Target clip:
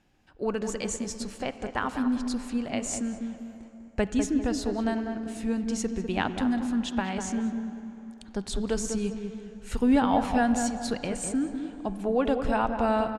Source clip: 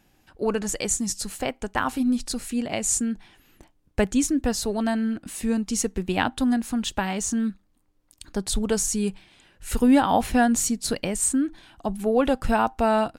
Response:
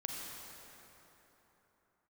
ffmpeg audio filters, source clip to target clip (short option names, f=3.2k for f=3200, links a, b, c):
-filter_complex "[0:a]lowpass=7.4k,asplit=2[a][b];[b]adelay=199,lowpass=f=1.3k:p=1,volume=-6dB,asplit=2[c][d];[d]adelay=199,lowpass=f=1.3k:p=1,volume=0.41,asplit=2[e][f];[f]adelay=199,lowpass=f=1.3k:p=1,volume=0.41,asplit=2[g][h];[h]adelay=199,lowpass=f=1.3k:p=1,volume=0.41,asplit=2[i][j];[j]adelay=199,lowpass=f=1.3k:p=1,volume=0.41[k];[a][c][e][g][i][k]amix=inputs=6:normalize=0,asplit=2[l][m];[1:a]atrim=start_sample=2205,lowpass=4.2k[n];[m][n]afir=irnorm=-1:irlink=0,volume=-9dB[o];[l][o]amix=inputs=2:normalize=0,volume=-6.5dB"